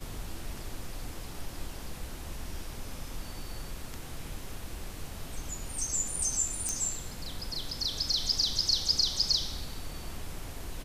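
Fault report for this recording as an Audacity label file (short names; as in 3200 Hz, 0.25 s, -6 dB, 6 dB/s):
6.690000	6.690000	pop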